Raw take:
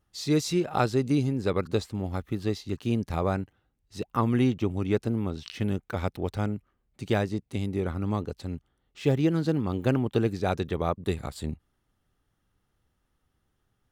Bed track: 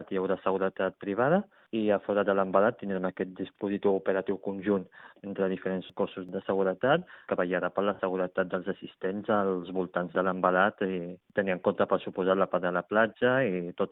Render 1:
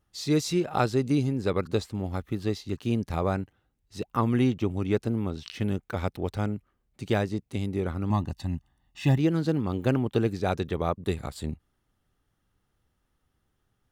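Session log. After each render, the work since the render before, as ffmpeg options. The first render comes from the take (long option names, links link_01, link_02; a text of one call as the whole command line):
ffmpeg -i in.wav -filter_complex "[0:a]asettb=1/sr,asplit=3[link_01][link_02][link_03];[link_01]atrim=end=8.104[link_04];[link_02]atrim=start=8.1:end=9.18,asetpts=PTS-STARTPTS,afade=type=in:duration=0.004:curve=qsin,afade=type=out:start_time=1.076:duration=0.004:curve=qsin,aecho=1:1:1.1:0.89,atrim=end_sample=47628[link_05];[link_03]atrim=start=9.176[link_06];[link_04][link_05]acrossfade=duration=0.004:curve1=hsin:curve2=qsin[link_07];[link_07][link_06]acrossfade=duration=0.004:curve1=qsin:curve2=hsin" out.wav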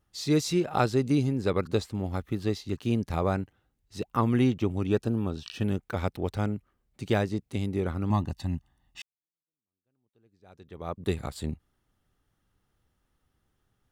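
ffmpeg -i in.wav -filter_complex "[0:a]asettb=1/sr,asplit=3[link_01][link_02][link_03];[link_01]atrim=end=4.874[link_04];[link_02]atrim=start=4.87:end=5.64,asetpts=PTS-STARTPTS,afade=type=in:duration=0.004:curve=qsin,afade=type=out:start_time=0.766:duration=0.004:curve=qsin,asuperstop=centerf=2100:order=20:qfactor=5.8[link_05];[link_03]atrim=start=5.636[link_06];[link_04][link_05]acrossfade=duration=0.004:curve1=hsin:curve2=qsin[link_07];[link_07][link_06]acrossfade=duration=0.004:curve1=qsin:curve2=hsin,asplit=2[link_08][link_09];[link_08]atrim=end=9.02,asetpts=PTS-STARTPTS,afade=type=out:start_time=9.016:duration=0.004:curve=hsin[link_10];[link_09]atrim=start=9.02,asetpts=PTS-STARTPTS,afade=type=in:duration=2.02:curve=exp[link_11];[link_10][link_11]concat=n=2:v=0:a=1" out.wav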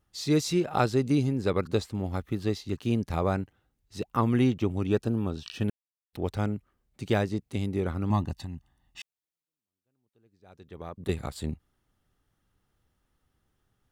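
ffmpeg -i in.wav -filter_complex "[0:a]asettb=1/sr,asplit=3[link_01][link_02][link_03];[link_01]atrim=end=8.364[link_04];[link_02]atrim=start=8.36:end=11.09,asetpts=PTS-STARTPTS,afade=type=in:duration=0.004:curve=qsin,afade=type=out:start_time=2.726:duration=0.004:curve=qsin,acompressor=threshold=-33dB:ratio=6:attack=3.2:release=140:knee=1:detection=peak[link_05];[link_03]atrim=start=11.086[link_06];[link_04][link_05]acrossfade=duration=0.004:curve1=hsin:curve2=qsin[link_07];[link_07][link_06]acrossfade=duration=0.004:curve1=qsin:curve2=hsin,asplit=3[link_08][link_09][link_10];[link_08]atrim=end=5.7,asetpts=PTS-STARTPTS,afade=type=out:start_time=5.696:duration=0.004:curve=hsin[link_11];[link_09]atrim=start=5.7:end=6.13,asetpts=PTS-STARTPTS,volume=0[link_12];[link_10]atrim=start=6.13,asetpts=PTS-STARTPTS,afade=type=in:duration=0.004:curve=hsin[link_13];[link_11][link_12][link_13]concat=n=3:v=0:a=1" out.wav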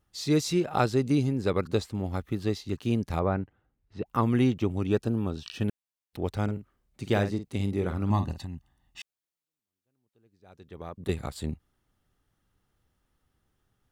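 ffmpeg -i in.wav -filter_complex "[0:a]asettb=1/sr,asplit=3[link_01][link_02][link_03];[link_01]atrim=end=3.194[link_04];[link_02]atrim=start=3.19:end=4.06,asetpts=PTS-STARTPTS,afade=type=in:duration=0.004:curve=qsin,afade=type=out:start_time=0.866:duration=0.004:curve=qsin,lowpass=2100[link_05];[link_03]atrim=start=4.056[link_06];[link_04][link_05]acrossfade=duration=0.004:curve1=hsin:curve2=qsin[link_07];[link_07][link_06]acrossfade=duration=0.004:curve1=qsin:curve2=hsin,asettb=1/sr,asplit=3[link_08][link_09][link_10];[link_08]atrim=end=6.434[link_11];[link_09]atrim=start=6.43:end=8.39,asetpts=PTS-STARTPTS,afade=type=in:duration=0.004:curve=qsin,afade=type=out:start_time=1.956:duration=0.004:curve=qsin,asplit=2[link_12][link_13];[link_13]adelay=50,volume=-10dB[link_14];[link_12][link_14]amix=inputs=2:normalize=0,atrim=end_sample=86436[link_15];[link_10]atrim=start=8.386[link_16];[link_11][link_15]acrossfade=duration=0.004:curve1=hsin:curve2=qsin[link_17];[link_17][link_16]acrossfade=duration=0.004:curve1=qsin:curve2=hsin" out.wav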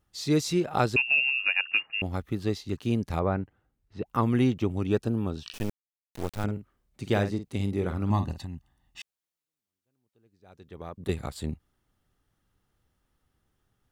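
ffmpeg -i in.wav -filter_complex "[0:a]asettb=1/sr,asplit=3[link_01][link_02][link_03];[link_01]atrim=end=0.964[link_04];[link_02]atrim=start=0.96:end=2.02,asetpts=PTS-STARTPTS,afade=type=in:duration=0.004:curve=qsin,afade=type=out:start_time=1.056:duration=0.004:curve=qsin,lowpass=frequency=2500:width_type=q:width=0.5098,lowpass=frequency=2500:width_type=q:width=0.6013,lowpass=frequency=2500:width_type=q:width=0.9,lowpass=frequency=2500:width_type=q:width=2.563,afreqshift=-2900[link_05];[link_03]atrim=start=2.016[link_06];[link_04][link_05]acrossfade=duration=0.004:curve1=hsin:curve2=qsin[link_07];[link_07][link_06]acrossfade=duration=0.004:curve1=qsin:curve2=hsin,asettb=1/sr,asplit=3[link_08][link_09][link_10];[link_08]atrim=end=5.534[link_11];[link_09]atrim=start=5.53:end=6.44,asetpts=PTS-STARTPTS,afade=type=in:duration=0.004:curve=qsin,afade=type=out:start_time=0.906:duration=0.004:curve=qsin,acrusher=bits=4:dc=4:mix=0:aa=0.000001[link_12];[link_10]atrim=start=6.436[link_13];[link_11][link_12]acrossfade=duration=0.004:curve1=hsin:curve2=qsin[link_14];[link_14][link_13]acrossfade=duration=0.004:curve1=qsin:curve2=hsin" out.wav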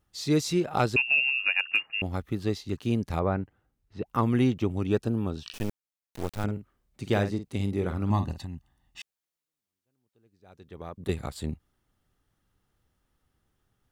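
ffmpeg -i in.wav -af "asoftclip=type=hard:threshold=-13dB" out.wav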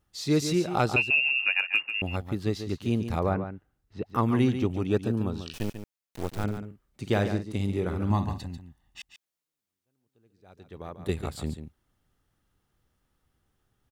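ffmpeg -i in.wav -af "aecho=1:1:142:0.335" out.wav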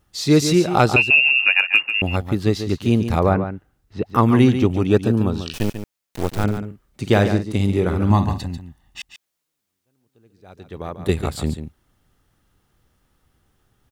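ffmpeg -i in.wav -af "volume=9.5dB,alimiter=limit=-3dB:level=0:latency=1" out.wav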